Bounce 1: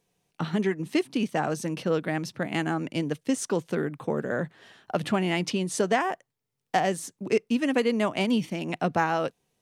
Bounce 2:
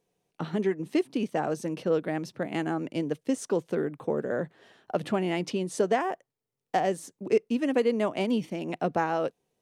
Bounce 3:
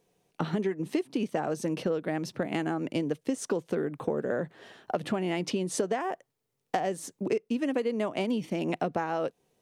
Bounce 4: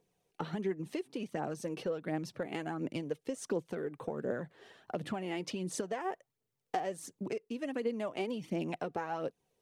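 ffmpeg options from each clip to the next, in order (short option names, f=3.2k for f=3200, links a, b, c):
-af "equalizer=f=450:t=o:w=1.9:g=7.5,volume=-6.5dB"
-af "acompressor=threshold=-32dB:ratio=6,volume=6dB"
-af "aphaser=in_gain=1:out_gain=1:delay=2.7:decay=0.45:speed=1.4:type=triangular,volume=-7.5dB"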